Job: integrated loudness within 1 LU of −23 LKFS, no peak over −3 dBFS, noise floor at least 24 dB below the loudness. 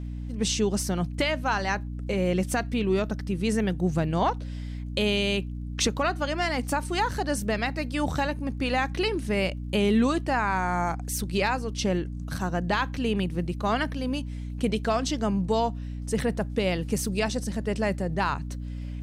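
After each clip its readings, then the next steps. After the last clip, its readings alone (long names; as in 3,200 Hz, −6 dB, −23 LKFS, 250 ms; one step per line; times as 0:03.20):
crackle rate 24 per second; mains hum 60 Hz; hum harmonics up to 300 Hz; level of the hum −31 dBFS; integrated loudness −27.5 LKFS; sample peak −12.0 dBFS; target loudness −23.0 LKFS
→ click removal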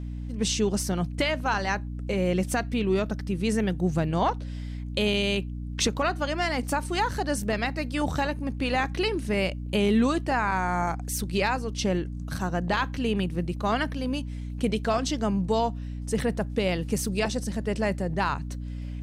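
crackle rate 0 per second; mains hum 60 Hz; hum harmonics up to 300 Hz; level of the hum −31 dBFS
→ hum removal 60 Hz, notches 5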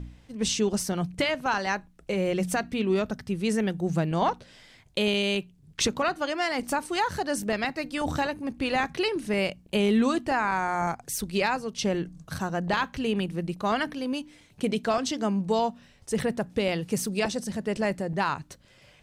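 mains hum none found; integrated loudness −28.0 LKFS; sample peak −12.5 dBFS; target loudness −23.0 LKFS
→ level +5 dB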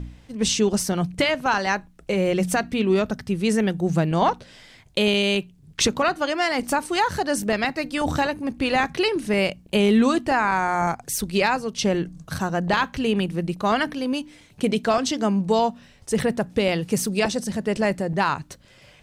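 integrated loudness −23.0 LKFS; sample peak −7.5 dBFS; background noise floor −53 dBFS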